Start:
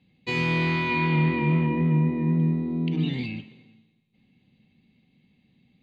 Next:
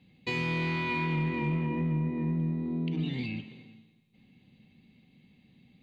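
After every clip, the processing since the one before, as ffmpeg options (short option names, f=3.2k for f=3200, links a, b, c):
-filter_complex "[0:a]asplit=2[a][b];[b]aeval=exprs='clip(val(0),-1,0.0668)':c=same,volume=-9dB[c];[a][c]amix=inputs=2:normalize=0,acompressor=threshold=-35dB:ratio=2"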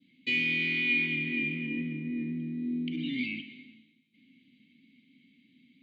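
-filter_complex "[0:a]asplit=3[a][b][c];[a]bandpass=f=270:t=q:w=8,volume=0dB[d];[b]bandpass=f=2.29k:t=q:w=8,volume=-6dB[e];[c]bandpass=f=3.01k:t=q:w=8,volume=-9dB[f];[d][e][f]amix=inputs=3:normalize=0,adynamicequalizer=threshold=0.00112:dfrequency=2500:dqfactor=1.7:tfrequency=2500:tqfactor=1.7:attack=5:release=100:ratio=0.375:range=3:mode=boostabove:tftype=bell,crystalizer=i=4:c=0,volume=7dB"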